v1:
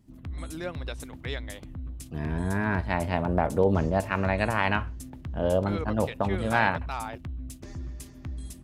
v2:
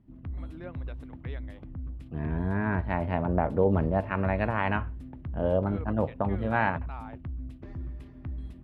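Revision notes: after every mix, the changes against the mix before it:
first voice −6.5 dB
master: add high-frequency loss of the air 480 metres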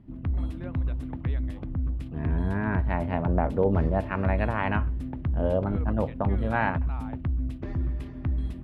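background +9.0 dB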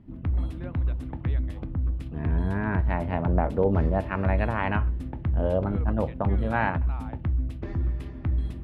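reverb: on, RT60 0.35 s

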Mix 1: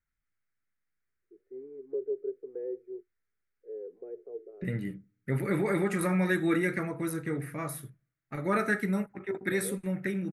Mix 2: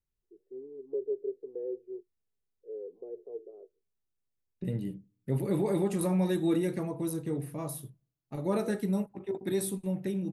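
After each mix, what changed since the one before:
first voice: entry −1.00 s
master: add flat-topped bell 1,700 Hz −15.5 dB 1.1 octaves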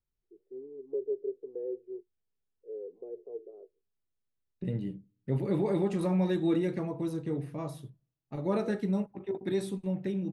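master: add low-pass filter 4,900 Hz 12 dB per octave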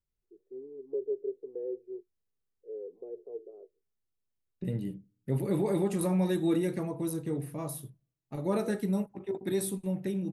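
master: remove low-pass filter 4,900 Hz 12 dB per octave

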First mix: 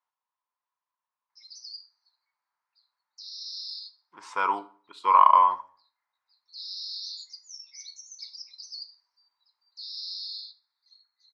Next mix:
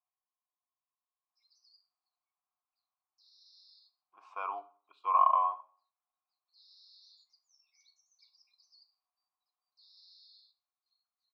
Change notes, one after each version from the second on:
master: add formant filter a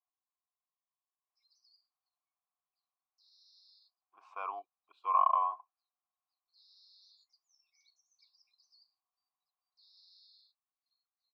reverb: off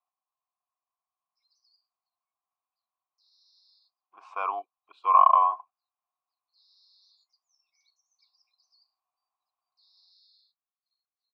speech +9.5 dB

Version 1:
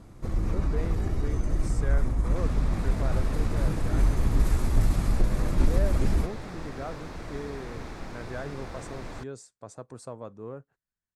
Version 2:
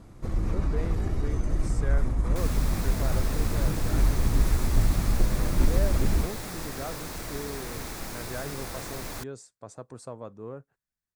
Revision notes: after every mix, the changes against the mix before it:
second sound: remove head-to-tape spacing loss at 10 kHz 21 dB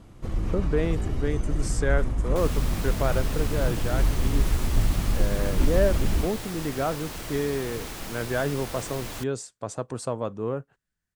speech +10.5 dB
master: add parametric band 3,000 Hz +7.5 dB 0.37 octaves

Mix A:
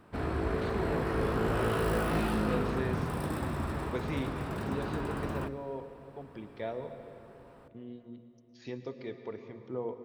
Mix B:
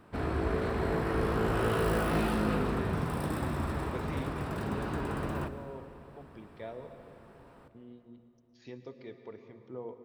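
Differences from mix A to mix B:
speech −5.5 dB
background: send +7.0 dB

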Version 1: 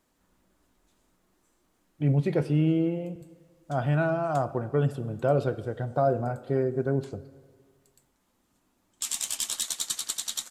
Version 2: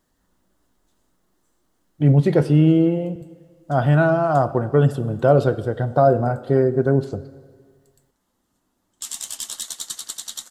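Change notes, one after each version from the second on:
speech +9.0 dB
master: add parametric band 2,400 Hz −8.5 dB 0.26 octaves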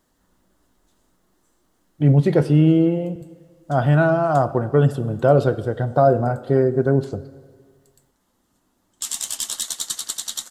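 background +4.0 dB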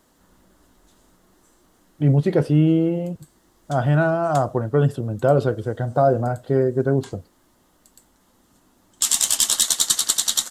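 background +8.0 dB
reverb: off

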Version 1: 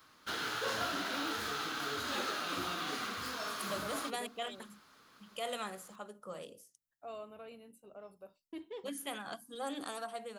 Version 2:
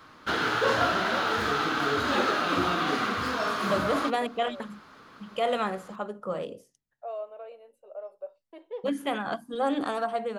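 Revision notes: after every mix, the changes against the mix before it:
first voice: add four-pole ladder high-pass 500 Hz, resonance 65%
second voice: add high-shelf EQ 5,200 Hz −5 dB
master: remove first-order pre-emphasis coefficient 0.8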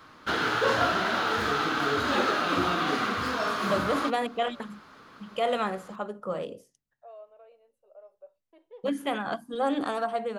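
first voice −11.0 dB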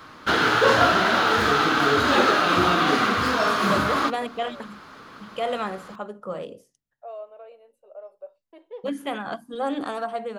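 first voice +9.5 dB
background +7.0 dB

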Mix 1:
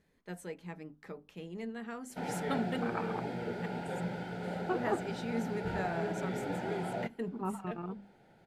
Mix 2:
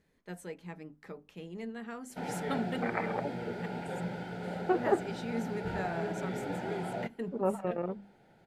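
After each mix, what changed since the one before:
second voice: remove phaser with its sweep stopped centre 2,000 Hz, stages 6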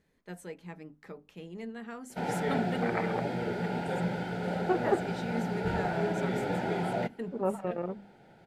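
background +5.5 dB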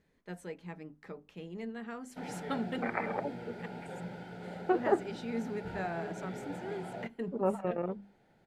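first voice: add high-shelf EQ 8,500 Hz −9.5 dB
background −11.0 dB

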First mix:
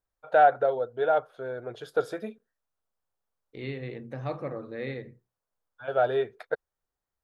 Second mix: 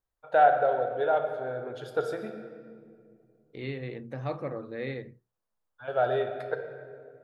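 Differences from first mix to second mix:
first voice −3.0 dB
reverb: on, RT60 2.1 s

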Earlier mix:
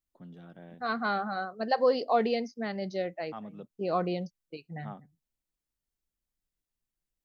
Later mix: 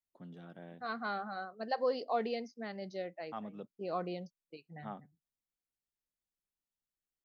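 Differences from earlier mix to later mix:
second voice −7.5 dB
master: add low-shelf EQ 95 Hz −10 dB

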